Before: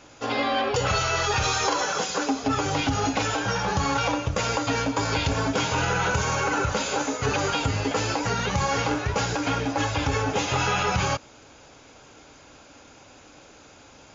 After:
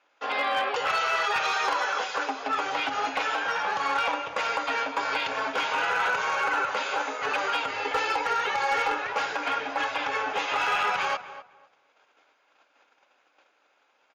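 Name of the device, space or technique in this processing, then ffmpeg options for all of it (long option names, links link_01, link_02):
walkie-talkie: -filter_complex "[0:a]tiltshelf=frequency=900:gain=-4.5,asettb=1/sr,asplit=3[link_01][link_02][link_03];[link_01]atrim=end=7.744[link_04];[link_02]atrim=start=7.74:end=9.02,asetpts=PTS-STARTPTS,afade=type=in:duration=0.004:curve=qsin,afade=type=out:start_time=1.276:duration=0.004:curve=qsin,aecho=1:1:2.3:0.63,atrim=end_sample=56448[link_05];[link_03]atrim=start=9.016[link_06];[link_04][link_05]acrossfade=duration=0.004:curve1=hsin:curve2=qsin[link_07];[link_07][link_06]acrossfade=duration=0.004:curve1=qsin:curve2=hsin,highpass=510,lowpass=2500,asoftclip=type=hard:threshold=-19dB,agate=range=-15dB:threshold=-50dB:ratio=16:detection=peak,asplit=2[link_08][link_09];[link_09]adelay=252,lowpass=frequency=1800:poles=1,volume=-13dB,asplit=2[link_10][link_11];[link_11]adelay=252,lowpass=frequency=1800:poles=1,volume=0.22,asplit=2[link_12][link_13];[link_13]adelay=252,lowpass=frequency=1800:poles=1,volume=0.22[link_14];[link_08][link_10][link_12][link_14]amix=inputs=4:normalize=0"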